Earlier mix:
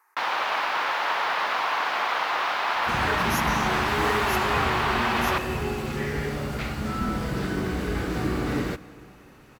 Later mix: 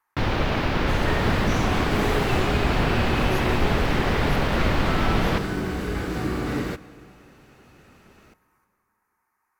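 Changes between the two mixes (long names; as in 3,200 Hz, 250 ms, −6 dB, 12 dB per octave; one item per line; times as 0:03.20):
speech −11.5 dB
first sound: remove high-pass with resonance 950 Hz, resonance Q 1.8
second sound: entry −2.00 s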